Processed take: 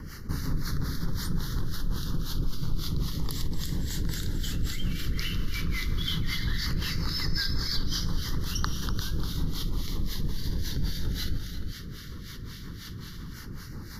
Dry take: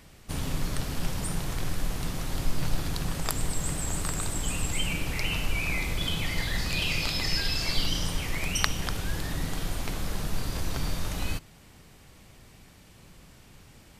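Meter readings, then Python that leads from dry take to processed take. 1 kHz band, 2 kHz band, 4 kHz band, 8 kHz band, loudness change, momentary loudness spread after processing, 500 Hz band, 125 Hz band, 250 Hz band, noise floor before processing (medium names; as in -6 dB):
-6.0 dB, -6.0 dB, -1.5 dB, -6.5 dB, -2.0 dB, 12 LU, -5.5 dB, +2.0 dB, +1.0 dB, -53 dBFS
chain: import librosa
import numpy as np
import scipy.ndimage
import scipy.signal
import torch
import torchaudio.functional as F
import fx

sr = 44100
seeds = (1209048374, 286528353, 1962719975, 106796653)

y = fx.filter_lfo_notch(x, sr, shape='saw_down', hz=0.15, low_hz=590.0, high_hz=3700.0, q=1.4)
y = fx.fixed_phaser(y, sr, hz=2500.0, stages=6)
y = y + 10.0 ** (-10.5 / 20.0) * np.pad(y, (int(347 * sr / 1000.0), 0))[:len(y)]
y = fx.rotary(y, sr, hz=5.5)
y = fx.harmonic_tremolo(y, sr, hz=3.7, depth_pct=70, crossover_hz=1300.0)
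y = fx.env_flatten(y, sr, amount_pct=50)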